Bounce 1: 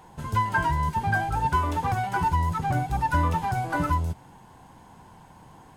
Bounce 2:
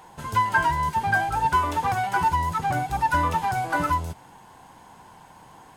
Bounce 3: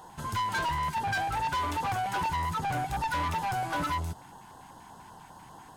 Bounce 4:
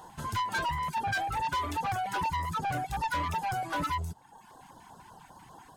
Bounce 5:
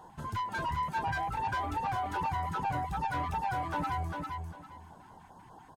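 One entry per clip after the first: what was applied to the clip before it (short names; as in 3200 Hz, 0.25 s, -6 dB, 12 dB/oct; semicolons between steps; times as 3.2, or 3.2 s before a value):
low shelf 330 Hz -10 dB; gain +4.5 dB
LFO notch square 5.1 Hz 510–2300 Hz; soft clip -27 dBFS, distortion -8 dB
reverb removal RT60 1 s
high shelf 2200 Hz -10 dB; feedback echo 0.399 s, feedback 23%, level -4 dB; gain -1.5 dB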